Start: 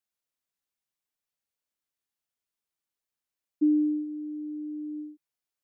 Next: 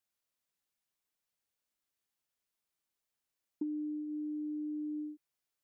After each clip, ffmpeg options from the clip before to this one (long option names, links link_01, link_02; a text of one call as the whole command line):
ffmpeg -i in.wav -af "acompressor=threshold=-37dB:ratio=10,volume=1dB" out.wav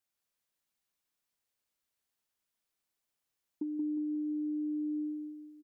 ffmpeg -i in.wav -af "aecho=1:1:179|358|537|716|895|1074:0.631|0.278|0.122|0.0537|0.0236|0.0104" out.wav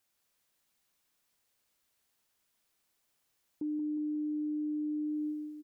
ffmpeg -i in.wav -af "alimiter=level_in=15.5dB:limit=-24dB:level=0:latency=1,volume=-15.5dB,volume=8.5dB" out.wav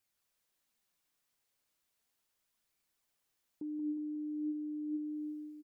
ffmpeg -i in.wav -af "flanger=delay=0.4:depth=7:regen=74:speed=0.36:shape=sinusoidal" out.wav